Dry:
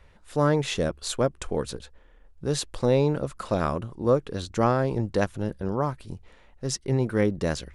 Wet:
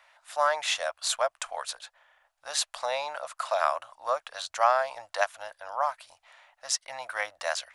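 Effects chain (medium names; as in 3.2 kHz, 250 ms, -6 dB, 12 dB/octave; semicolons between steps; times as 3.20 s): elliptic high-pass 640 Hz, stop band 40 dB; trim +4 dB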